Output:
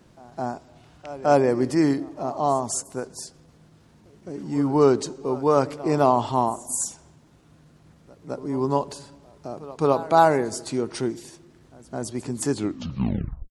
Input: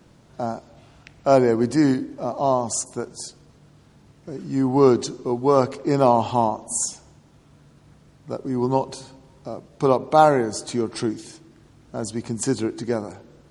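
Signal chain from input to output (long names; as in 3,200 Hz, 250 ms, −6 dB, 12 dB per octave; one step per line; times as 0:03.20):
turntable brake at the end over 0.97 s
pitch shifter +1 semitone
echo ahead of the sound 212 ms −19 dB
level −2 dB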